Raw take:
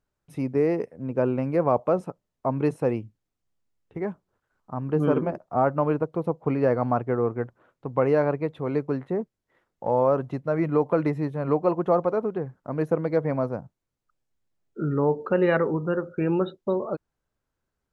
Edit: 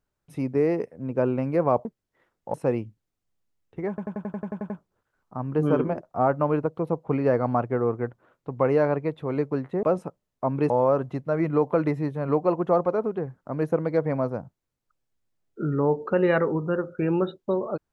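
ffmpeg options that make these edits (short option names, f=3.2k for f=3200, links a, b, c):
-filter_complex "[0:a]asplit=14[a][b][c][d][e][f][g][h][i][j][k][l][m][n];[a]atrim=end=1.852[o];[b]atrim=start=9.198:end=9.892[p];[c]atrim=start=2.718:end=4.162[q];[d]atrim=start=4.068:end=4.162[r];[e]atrim=start=4.068:end=4.162[s];[f]atrim=start=4.068:end=4.162[t];[g]atrim=start=4.068:end=4.162[u];[h]atrim=start=4.068:end=4.162[v];[i]atrim=start=4.068:end=4.162[w];[j]atrim=start=4.068:end=4.162[x];[k]atrim=start=4.068:end=4.162[y];[l]atrim=start=4.068:end=9.202[z];[m]atrim=start=1.848:end=2.722[aa];[n]atrim=start=9.888[ab];[o][p]acrossfade=d=0.004:c1=hsin:c2=hsin[ac];[ac][q]acrossfade=d=0.004:c1=hsin:c2=hsin[ad];[ad][r]acrossfade=d=0.004:c1=hsin:c2=hsin[ae];[ae][s]acrossfade=d=0.004:c1=hsin:c2=hsin[af];[af][t]acrossfade=d=0.004:c1=hsin:c2=hsin[ag];[ag][u]acrossfade=d=0.004:c1=hsin:c2=hsin[ah];[ah][v]acrossfade=d=0.004:c1=hsin:c2=hsin[ai];[ai][w]acrossfade=d=0.004:c1=hsin:c2=hsin[aj];[aj][x]acrossfade=d=0.004:c1=hsin:c2=hsin[ak];[ak][y]acrossfade=d=0.004:c1=hsin:c2=hsin[al];[al][z]acrossfade=d=0.004:c1=hsin:c2=hsin[am];[am][aa]acrossfade=d=0.004:c1=hsin:c2=hsin[an];[an][ab]acrossfade=d=0.004:c1=hsin:c2=hsin"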